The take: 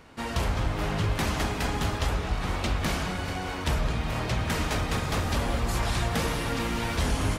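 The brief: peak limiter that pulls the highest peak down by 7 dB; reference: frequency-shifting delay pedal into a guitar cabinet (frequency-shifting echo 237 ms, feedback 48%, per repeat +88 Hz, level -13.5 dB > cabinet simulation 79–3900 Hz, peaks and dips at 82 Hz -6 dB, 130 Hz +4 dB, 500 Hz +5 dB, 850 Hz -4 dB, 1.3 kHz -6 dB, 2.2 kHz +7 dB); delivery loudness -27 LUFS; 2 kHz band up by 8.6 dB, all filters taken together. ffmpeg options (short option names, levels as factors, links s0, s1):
-filter_complex "[0:a]equalizer=f=2000:t=o:g=7,alimiter=limit=0.0891:level=0:latency=1,asplit=6[s0][s1][s2][s3][s4][s5];[s1]adelay=237,afreqshift=88,volume=0.211[s6];[s2]adelay=474,afreqshift=176,volume=0.101[s7];[s3]adelay=711,afreqshift=264,volume=0.0484[s8];[s4]adelay=948,afreqshift=352,volume=0.0234[s9];[s5]adelay=1185,afreqshift=440,volume=0.0112[s10];[s0][s6][s7][s8][s9][s10]amix=inputs=6:normalize=0,highpass=79,equalizer=f=82:t=q:w=4:g=-6,equalizer=f=130:t=q:w=4:g=4,equalizer=f=500:t=q:w=4:g=5,equalizer=f=850:t=q:w=4:g=-4,equalizer=f=1300:t=q:w=4:g=-6,equalizer=f=2200:t=q:w=4:g=7,lowpass=f=3900:w=0.5412,lowpass=f=3900:w=1.3066,volume=1.26"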